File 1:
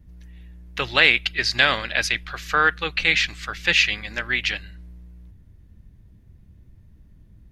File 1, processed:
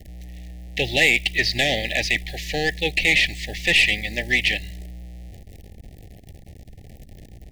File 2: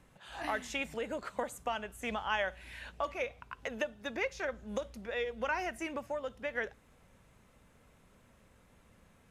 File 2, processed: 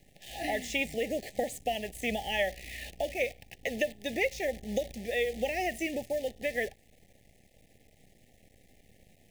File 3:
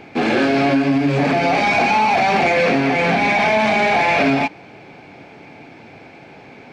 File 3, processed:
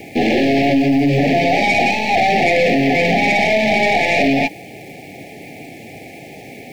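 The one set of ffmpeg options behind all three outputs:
ffmpeg -i in.wav -filter_complex "[0:a]acrossover=split=4500[link_01][link_02];[link_02]acompressor=threshold=-42dB:ratio=4:attack=1:release=60[link_03];[link_01][link_03]amix=inputs=2:normalize=0,asplit=2[link_04][link_05];[link_05]alimiter=limit=-10dB:level=0:latency=1,volume=0dB[link_06];[link_04][link_06]amix=inputs=2:normalize=0,acrusher=bits=8:dc=4:mix=0:aa=0.000001,aeval=exprs='(tanh(2.82*val(0)+0.2)-tanh(0.2))/2.82':channel_layout=same,asuperstop=centerf=1200:order=20:qfactor=1.3" out.wav

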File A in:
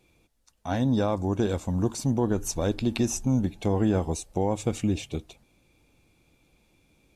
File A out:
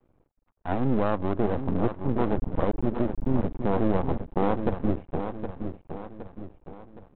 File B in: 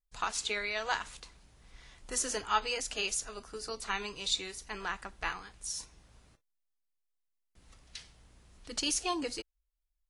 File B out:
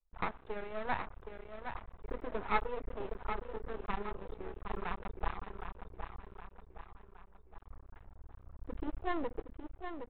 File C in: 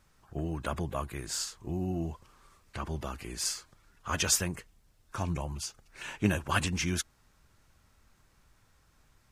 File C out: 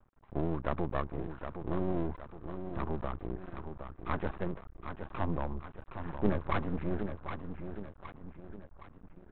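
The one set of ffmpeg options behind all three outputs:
ffmpeg -i in.wav -af "lowpass=frequency=1200:width=0.5412,lowpass=frequency=1200:width=1.3066,aecho=1:1:766|1532|2298|3064|3830:0.398|0.183|0.0842|0.0388|0.0178,asubboost=boost=3.5:cutoff=54,aresample=8000,aeval=exprs='max(val(0),0)':channel_layout=same,aresample=44100,volume=4.5dB" out.wav

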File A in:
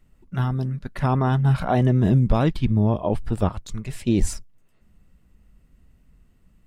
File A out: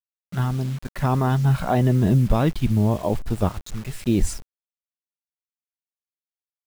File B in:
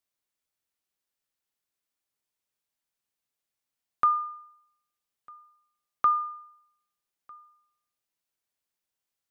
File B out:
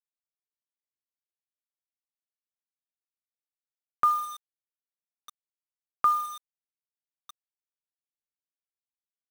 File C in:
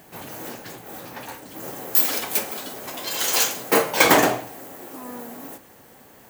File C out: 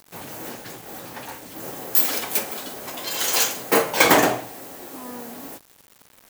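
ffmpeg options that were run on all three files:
ffmpeg -i in.wav -af "acrusher=bits=6:mix=0:aa=0.000001" out.wav

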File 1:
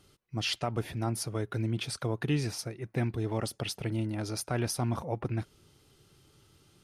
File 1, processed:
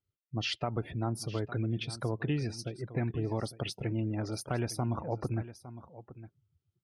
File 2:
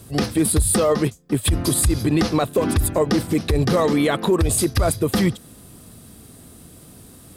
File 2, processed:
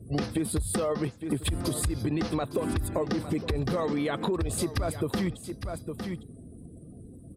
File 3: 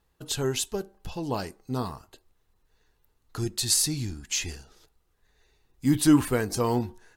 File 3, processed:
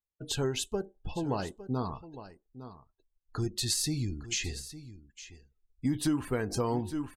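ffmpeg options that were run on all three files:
ffmpeg -i in.wav -af "afftdn=noise_reduction=31:noise_floor=-45,highshelf=frequency=6000:gain=-8.5,aecho=1:1:858:0.158,acompressor=threshold=-26dB:ratio=6" out.wav

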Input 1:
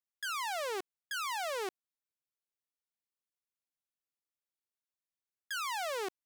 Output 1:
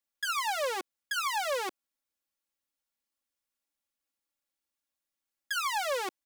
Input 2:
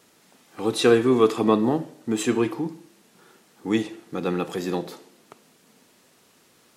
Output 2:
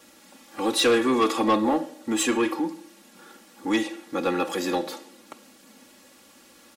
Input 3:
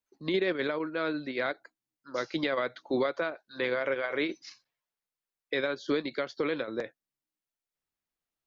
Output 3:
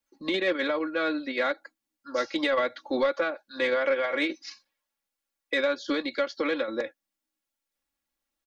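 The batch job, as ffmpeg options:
ffmpeg -i in.wav -filter_complex "[0:a]aecho=1:1:3.6:0.88,acrossover=split=370[link_01][link_02];[link_01]acompressor=threshold=-52dB:ratio=1.5[link_03];[link_03][link_02]amix=inputs=2:normalize=0,asoftclip=type=tanh:threshold=-17.5dB,volume=3dB" out.wav

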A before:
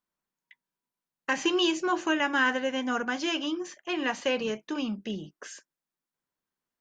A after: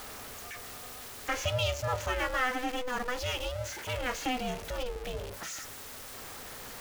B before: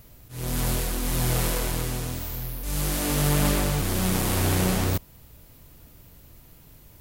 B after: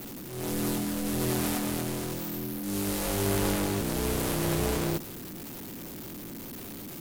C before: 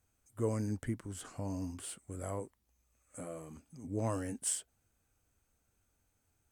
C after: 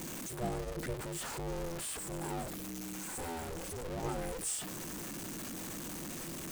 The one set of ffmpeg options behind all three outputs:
ffmpeg -i in.wav -af "aeval=exprs='val(0)+0.5*0.0335*sgn(val(0))':channel_layout=same,bandreject=frequency=105.6:width_type=h:width=4,bandreject=frequency=211.2:width_type=h:width=4,bandreject=frequency=316.8:width_type=h:width=4,bandreject=frequency=422.4:width_type=h:width=4,aeval=exprs='val(0)*sin(2*PI*250*n/s)':channel_layout=same,volume=-3.5dB" out.wav

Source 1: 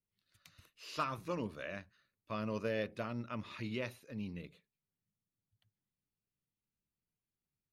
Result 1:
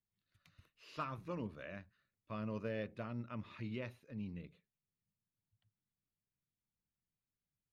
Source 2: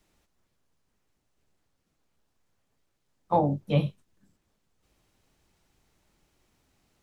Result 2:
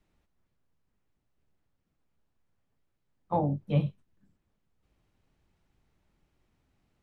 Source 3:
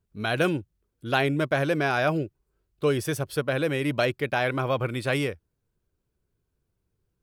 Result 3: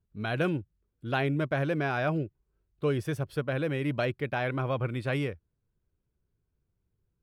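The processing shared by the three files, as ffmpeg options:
ffmpeg -i in.wav -af "bass=frequency=250:gain=5,treble=frequency=4000:gain=-9,volume=-5.5dB" out.wav

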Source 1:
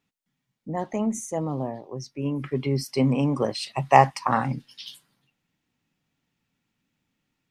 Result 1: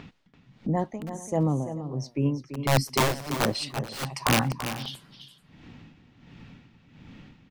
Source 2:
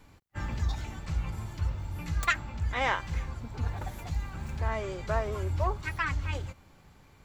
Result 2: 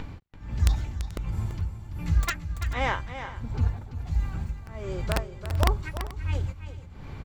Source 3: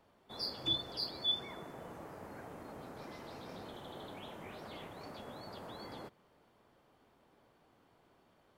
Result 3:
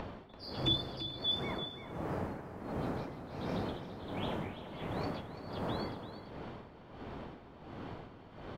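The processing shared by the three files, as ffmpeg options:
ffmpeg -i in.wav -filter_complex "[0:a]lowshelf=frequency=290:gain=9,acrossover=split=4900[link_01][link_02];[link_01]acompressor=mode=upward:threshold=-25dB:ratio=2.5[link_03];[link_03][link_02]amix=inputs=2:normalize=0,aeval=exprs='(mod(3.98*val(0)+1,2)-1)/3.98':channel_layout=same,tremolo=f=1.4:d=0.96,aecho=1:1:337|434:0.299|0.112" out.wav

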